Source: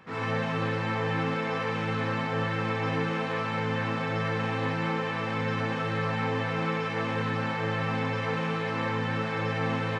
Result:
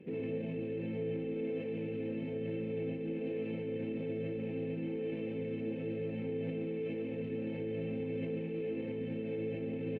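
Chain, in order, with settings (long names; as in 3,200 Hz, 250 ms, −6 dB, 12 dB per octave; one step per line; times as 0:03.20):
drawn EQ curve 110 Hz 0 dB, 160 Hz +8 dB, 410 Hz +15 dB, 1,200 Hz −27 dB, 2,600 Hz +1 dB, 4,900 Hz −22 dB
brickwall limiter −25.5 dBFS, peak gain reduction 15.5 dB
single-tap delay 143 ms −8 dB
level −5.5 dB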